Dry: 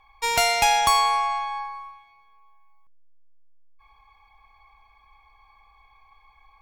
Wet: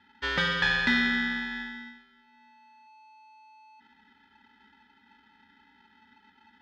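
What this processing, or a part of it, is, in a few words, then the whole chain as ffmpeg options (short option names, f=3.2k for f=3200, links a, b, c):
ring modulator pedal into a guitar cabinet: -af "aeval=exprs='val(0)*sgn(sin(2*PI*870*n/s))':c=same,highpass=100,equalizer=f=160:t=q:w=4:g=-5,equalizer=f=700:t=q:w=4:g=-8,equalizer=f=2.8k:t=q:w=4:g=-4,lowpass=f=3.7k:w=0.5412,lowpass=f=3.7k:w=1.3066,volume=-3dB"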